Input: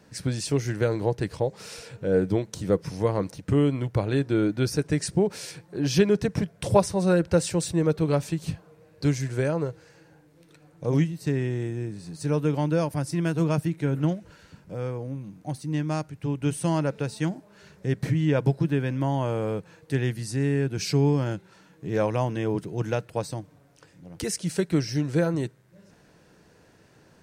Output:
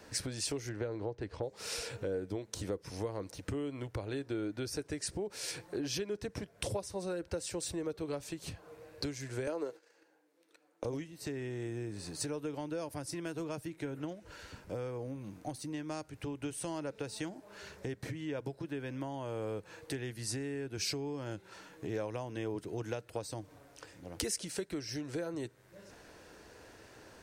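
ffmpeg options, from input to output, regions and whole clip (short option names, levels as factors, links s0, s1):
-filter_complex "[0:a]asettb=1/sr,asplit=3[s0][s1][s2];[s0]atrim=end=0.694[s3];[s1]atrim=start=0.69:end=1.43,asetpts=PTS-STARTPTS,afade=t=in:d=0.004:c=qsin,afade=t=out:st=0.736:d=0.004:c=qsin,lowpass=6400,highshelf=f=2800:g=-9.5[s4];[s2]atrim=start=1.426[s5];[s3][s4]acrossfade=d=0.004:c1=hsin:c2=qsin[s6];[s6][s5]acrossfade=d=0.004:c1=qsin:c2=hsin,asettb=1/sr,asplit=3[s7][s8][s9];[s7]atrim=end=9.474[s10];[s8]atrim=start=9.47:end=10.85,asetpts=PTS-STARTPTS,afade=t=in:d=0.004:c=qsin,afade=t=out:st=1.376:d=0.004:c=qsin,highpass=f=230:w=0.5412,highpass=f=230:w=1.3066,agate=range=0.0891:threshold=0.00251:ratio=16:release=100:detection=peak,acontrast=47[s11];[s9]atrim=start=10.846[s12];[s10][s11]acrossfade=d=0.004:c1=hsin:c2=qsin[s13];[s13][s12]acrossfade=d=0.004:c1=qsin:c2=hsin,acompressor=threshold=0.0178:ratio=6,equalizer=f=160:w=1.6:g=-14,acrossover=split=490|3000[s14][s15][s16];[s15]acompressor=threshold=0.00224:ratio=1.5[s17];[s14][s17][s16]amix=inputs=3:normalize=0,volume=1.58"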